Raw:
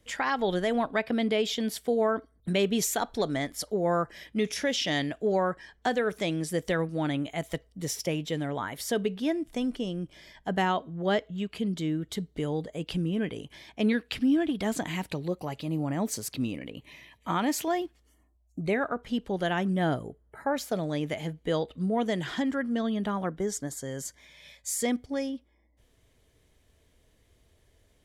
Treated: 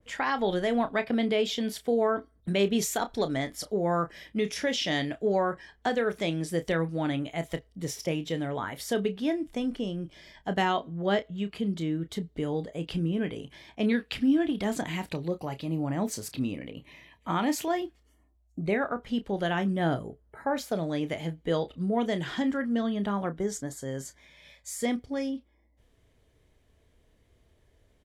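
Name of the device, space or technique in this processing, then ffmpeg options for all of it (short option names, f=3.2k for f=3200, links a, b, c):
behind a face mask: -filter_complex "[0:a]asettb=1/sr,asplit=3[a][b][c];[a]atrim=end=10.044[d];[b]atrim=start=10.04:end=10.89,asetpts=PTS-STARTPTS,afade=t=in:d=0.004:c=qsin,afade=t=out:st=0.846:d=0.004:c=qsin,equalizer=f=5k:w=0.67:g=4[e];[c]atrim=start=10.886[f];[d][e]acrossfade=d=0.004:c1=hsin:c2=qsin[g];[g][f]acrossfade=d=0.004:c1=qsin:c2=hsin,highshelf=f=3.3k:g=-8,asplit=2[h][i];[i]adelay=30,volume=-11dB[j];[h][j]amix=inputs=2:normalize=0,adynamicequalizer=threshold=0.00794:dfrequency=2300:dqfactor=0.7:tfrequency=2300:tqfactor=0.7:attack=5:release=100:ratio=0.375:range=2:mode=boostabove:tftype=highshelf"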